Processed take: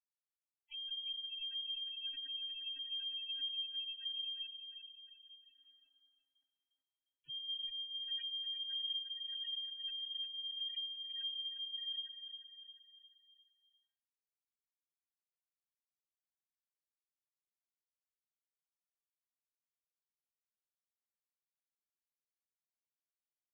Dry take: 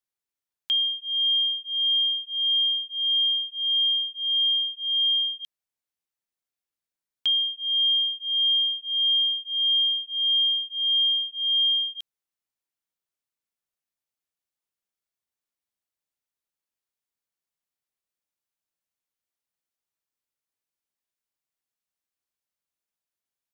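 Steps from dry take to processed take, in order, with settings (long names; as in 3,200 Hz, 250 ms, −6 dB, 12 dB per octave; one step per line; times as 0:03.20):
three sine waves on the formant tracks
leveller curve on the samples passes 1
wrap-around overflow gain 22.5 dB
brickwall limiter −29 dBFS, peak gain reduction 6.5 dB
linear-prediction vocoder at 8 kHz pitch kept
feedback delay network reverb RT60 2.4 s, low-frequency decay 0.85×, high-frequency decay 0.25×, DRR −7 dB
0:04.45–0:07.29: downward compressor 12 to 1, threshold −35 dBFS, peak gain reduction 11.5 dB
noise gate −35 dBFS, range −27 dB
high-frequency loss of the air 430 metres
gate on every frequency bin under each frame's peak −10 dB strong
repeating echo 354 ms, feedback 47%, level −8 dB
level that may fall only so fast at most 130 dB per second
level −4 dB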